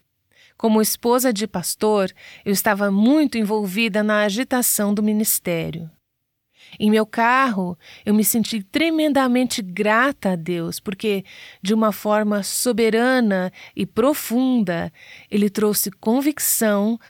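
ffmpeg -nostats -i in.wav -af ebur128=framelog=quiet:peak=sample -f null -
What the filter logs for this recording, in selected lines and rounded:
Integrated loudness:
  I:         -19.5 LUFS
  Threshold: -29.9 LUFS
Loudness range:
  LRA:         2.0 LU
  Threshold: -39.9 LUFS
  LRA low:   -20.9 LUFS
  LRA high:  -18.9 LUFS
Sample peak:
  Peak:       -4.7 dBFS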